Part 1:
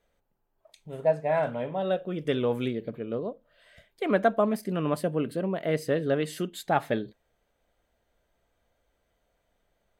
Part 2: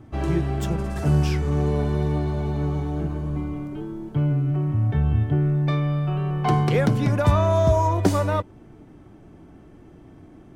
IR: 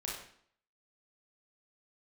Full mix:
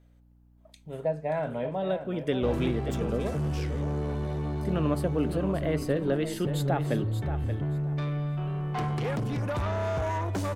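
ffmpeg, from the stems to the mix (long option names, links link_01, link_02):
-filter_complex "[0:a]acrossover=split=400[link_01][link_02];[link_02]acompressor=threshold=-31dB:ratio=3[link_03];[link_01][link_03]amix=inputs=2:normalize=0,aeval=exprs='val(0)+0.00126*(sin(2*PI*60*n/s)+sin(2*PI*2*60*n/s)/2+sin(2*PI*3*60*n/s)/3+sin(2*PI*4*60*n/s)/4+sin(2*PI*5*60*n/s)/5)':channel_layout=same,volume=0.5dB,asplit=3[link_04][link_05][link_06];[link_04]atrim=end=3.82,asetpts=PTS-STARTPTS,afade=type=out:start_time=3.816:duration=0.004:curve=hsin[link_07];[link_05]atrim=start=3.82:end=4.61,asetpts=PTS-STARTPTS,volume=0[link_08];[link_06]atrim=start=4.61,asetpts=PTS-STARTPTS,afade=type=in:duration=0.004:curve=hsin[link_09];[link_07][link_08][link_09]concat=n=3:v=0:a=1,asplit=2[link_10][link_11];[link_11]volume=-9.5dB[link_12];[1:a]asoftclip=type=tanh:threshold=-21.5dB,adelay=2300,volume=-4.5dB[link_13];[link_12]aecho=0:1:579|1158|1737:1|0.2|0.04[link_14];[link_10][link_13][link_14]amix=inputs=3:normalize=0"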